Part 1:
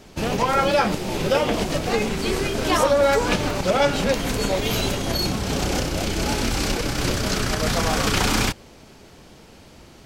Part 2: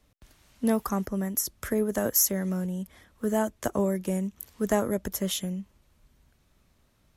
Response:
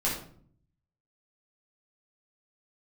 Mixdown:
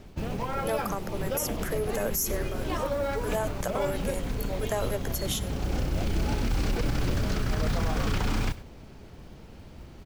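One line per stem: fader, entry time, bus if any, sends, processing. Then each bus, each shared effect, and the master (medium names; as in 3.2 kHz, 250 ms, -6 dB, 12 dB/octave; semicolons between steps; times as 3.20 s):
-4.5 dB, 0.00 s, no send, echo send -22.5 dB, low-pass 3.1 kHz 6 dB/octave; bass shelf 150 Hz +11.5 dB; modulation noise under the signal 26 dB; auto duck -8 dB, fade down 0.25 s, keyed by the second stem
+0.5 dB, 0.00 s, no send, echo send -23.5 dB, high-pass 420 Hz 24 dB/octave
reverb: none
echo: delay 98 ms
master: peak limiter -18.5 dBFS, peak gain reduction 10.5 dB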